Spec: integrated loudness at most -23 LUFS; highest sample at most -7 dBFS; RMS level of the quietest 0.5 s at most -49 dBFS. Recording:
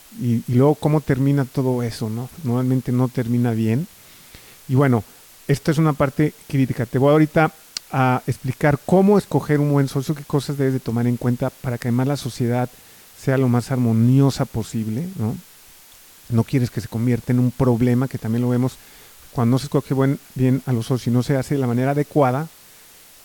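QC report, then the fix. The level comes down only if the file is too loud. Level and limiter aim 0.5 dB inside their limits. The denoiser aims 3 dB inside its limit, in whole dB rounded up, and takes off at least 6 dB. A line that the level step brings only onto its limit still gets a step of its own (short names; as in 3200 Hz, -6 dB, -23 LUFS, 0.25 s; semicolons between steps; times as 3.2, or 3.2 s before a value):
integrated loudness -20.0 LUFS: fail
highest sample -5.0 dBFS: fail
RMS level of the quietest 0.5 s -47 dBFS: fail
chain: gain -3.5 dB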